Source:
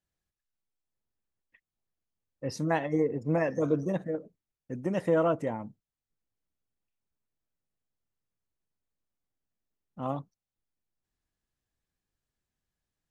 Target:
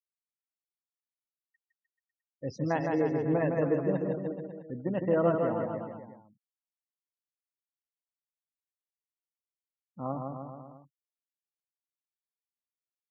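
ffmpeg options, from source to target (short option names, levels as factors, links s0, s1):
-filter_complex "[0:a]afftfilt=real='re*gte(hypot(re,im),0.01)':imag='im*gte(hypot(re,im),0.01)':win_size=1024:overlap=0.75,highshelf=f=3400:g=-10.5,asplit=2[s0][s1];[s1]aecho=0:1:160|304|433.6|550.2|655.2:0.631|0.398|0.251|0.158|0.1[s2];[s0][s2]amix=inputs=2:normalize=0,volume=0.841"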